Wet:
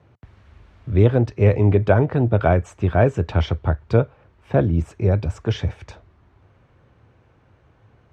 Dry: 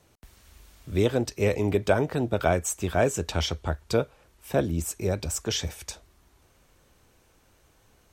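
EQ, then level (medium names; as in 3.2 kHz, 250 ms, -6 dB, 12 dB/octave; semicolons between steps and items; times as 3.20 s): high-pass 54 Hz; low-pass 2 kHz 12 dB/octave; peaking EQ 110 Hz +10 dB 0.86 oct; +5.0 dB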